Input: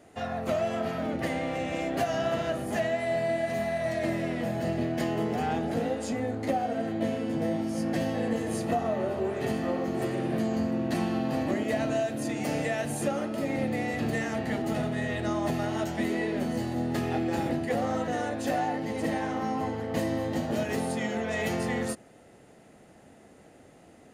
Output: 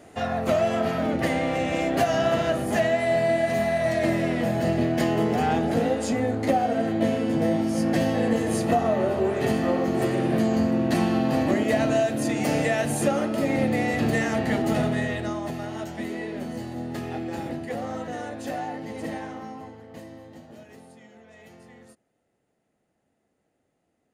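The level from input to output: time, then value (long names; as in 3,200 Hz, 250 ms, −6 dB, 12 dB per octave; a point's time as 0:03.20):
0:14.92 +6 dB
0:15.47 −3 dB
0:19.15 −3 dB
0:19.75 −11.5 dB
0:21.07 −20 dB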